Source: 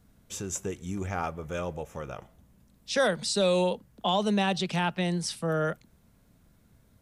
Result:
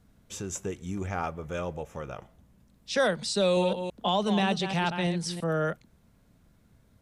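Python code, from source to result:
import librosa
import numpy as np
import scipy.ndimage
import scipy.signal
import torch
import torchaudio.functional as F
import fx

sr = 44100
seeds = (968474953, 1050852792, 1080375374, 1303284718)

y = fx.reverse_delay(x, sr, ms=167, wet_db=-8.0, at=(3.4, 5.44))
y = fx.high_shelf(y, sr, hz=9000.0, db=-7.0)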